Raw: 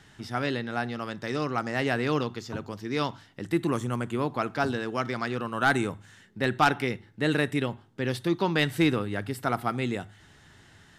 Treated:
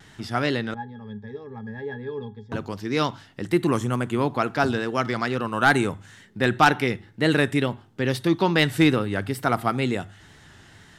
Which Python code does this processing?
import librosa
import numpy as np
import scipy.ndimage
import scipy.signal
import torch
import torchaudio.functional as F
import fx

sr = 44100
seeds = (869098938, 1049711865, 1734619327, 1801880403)

y = fx.wow_flutter(x, sr, seeds[0], rate_hz=2.1, depth_cents=59.0)
y = fx.octave_resonator(y, sr, note='G#', decay_s=0.13, at=(0.74, 2.52))
y = y * librosa.db_to_amplitude(5.0)